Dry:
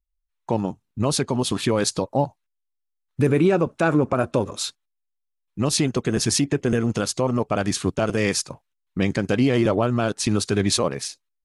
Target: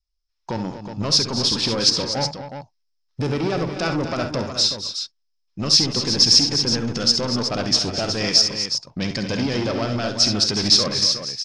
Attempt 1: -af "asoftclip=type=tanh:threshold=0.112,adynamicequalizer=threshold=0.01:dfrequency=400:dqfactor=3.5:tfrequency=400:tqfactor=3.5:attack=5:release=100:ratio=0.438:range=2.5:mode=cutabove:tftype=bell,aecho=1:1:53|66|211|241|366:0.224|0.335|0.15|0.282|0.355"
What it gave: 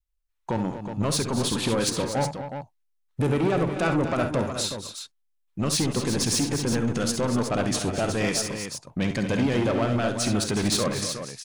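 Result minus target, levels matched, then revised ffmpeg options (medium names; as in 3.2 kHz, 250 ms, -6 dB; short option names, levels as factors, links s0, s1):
4 kHz band -7.0 dB
-af "asoftclip=type=tanh:threshold=0.112,adynamicequalizer=threshold=0.01:dfrequency=400:dqfactor=3.5:tfrequency=400:tqfactor=3.5:attack=5:release=100:ratio=0.438:range=2.5:mode=cutabove:tftype=bell,lowpass=f=5200:t=q:w=10,aecho=1:1:53|66|211|241|366:0.224|0.335|0.15|0.282|0.355"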